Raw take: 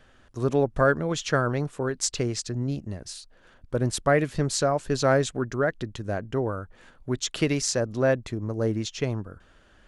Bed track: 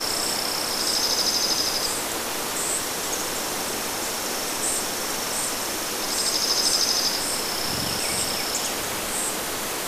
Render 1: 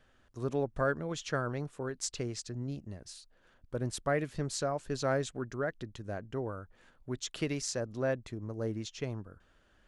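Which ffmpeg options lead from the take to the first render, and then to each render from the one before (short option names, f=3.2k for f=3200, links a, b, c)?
-af "volume=-9.5dB"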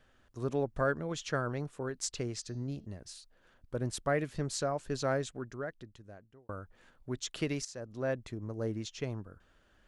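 -filter_complex "[0:a]asettb=1/sr,asplit=3[a][b][c];[a]atrim=end=2.394[d];[b]atrim=start=2.39:end=2.86,asetpts=PTS-STARTPTS,afade=t=in:d=0.004:c=qsin,afade=t=out:st=0.466:d=0.004:c=qsin,bandreject=f=216.8:t=h:w=4,bandreject=f=433.6:t=h:w=4,bandreject=f=650.4:t=h:w=4,bandreject=f=867.2:t=h:w=4,bandreject=f=1.084k:t=h:w=4,bandreject=f=1.3008k:t=h:w=4,bandreject=f=1.5176k:t=h:w=4,bandreject=f=1.7344k:t=h:w=4,bandreject=f=1.9512k:t=h:w=4,bandreject=f=2.168k:t=h:w=4,bandreject=f=2.3848k:t=h:w=4,bandreject=f=2.6016k:t=h:w=4,bandreject=f=2.8184k:t=h:w=4,bandreject=f=3.0352k:t=h:w=4,bandreject=f=3.252k:t=h:w=4,bandreject=f=3.4688k:t=h:w=4,bandreject=f=3.6856k:t=h:w=4,bandreject=f=3.9024k:t=h:w=4,bandreject=f=4.1192k:t=h:w=4,bandreject=f=4.336k:t=h:w=4,bandreject=f=4.5528k:t=h:w=4,bandreject=f=4.7696k:t=h:w=4,bandreject=f=4.9864k:t=h:w=4,bandreject=f=5.2032k:t=h:w=4,bandreject=f=5.42k:t=h:w=4,bandreject=f=5.6368k:t=h:w=4,bandreject=f=5.8536k:t=h:w=4,bandreject=f=6.0704k:t=h:w=4,bandreject=f=6.2872k:t=h:w=4[e];[c]atrim=start=2.856[f];[d][e]acrossfade=d=0.004:c1=hsin:c2=qsin[g];[g][f]acrossfade=d=0.004:c1=qsin:c2=hsin,asplit=3[h][i][j];[h]atrim=end=6.49,asetpts=PTS-STARTPTS,afade=t=out:st=4.96:d=1.53[k];[i]atrim=start=6.49:end=7.65,asetpts=PTS-STARTPTS,afade=t=in:d=0.004:c=hsin,afade=t=out:st=1.156:d=0.004:c=hsin:silence=0.199526[l];[j]atrim=start=7.65,asetpts=PTS-STARTPTS,afade=t=in:d=0.56:silence=0.199526[m];[k][l][m]concat=n=3:v=0:a=1"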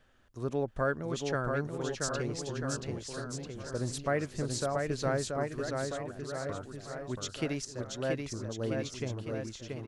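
-af "aecho=1:1:680|1292|1843|2339|2785:0.631|0.398|0.251|0.158|0.1"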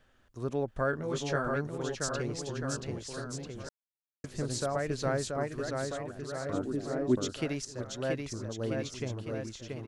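-filter_complex "[0:a]asettb=1/sr,asplit=3[a][b][c];[a]atrim=end=0.914[d];[b]atrim=start=0.91:end=1.56,asetpts=PTS-STARTPTS,afade=t=in:d=0.004:c=qsin,afade=t=out:st=0.646:d=0.004:c=qsin,asplit=2[e][f];[f]adelay=20,volume=-3.5dB[g];[e][g]amix=inputs=2:normalize=0,atrim=end_sample=28665[h];[c]atrim=start=1.556[i];[d][h]acrossfade=d=0.004:c1=hsin:c2=qsin[j];[j][i]acrossfade=d=0.004:c1=qsin:c2=hsin,asettb=1/sr,asplit=3[k][l][m];[k]atrim=end=6.534[n];[l]atrim=start=6.53:end=7.33,asetpts=PTS-STARTPTS,afade=t=in:d=0.004:c=qsin,afade=t=out:st=0.796:d=0.004:c=qsin,equalizer=f=300:t=o:w=1.5:g=15[o];[m]atrim=start=7.326[p];[n][o]acrossfade=d=0.004:c1=hsin:c2=qsin[q];[q][p]acrossfade=d=0.004:c1=qsin:c2=hsin,asplit=3[r][s][t];[r]atrim=end=3.69,asetpts=PTS-STARTPTS,afade=t=out:st=3.686:d=0.004:c=hsin[u];[s]atrim=start=3.69:end=4.24,asetpts=PTS-STARTPTS,volume=0[v];[t]atrim=start=4.24,asetpts=PTS-STARTPTS,afade=t=in:d=0.004:c=hsin[w];[u][v][w]concat=n=3:v=0:a=1"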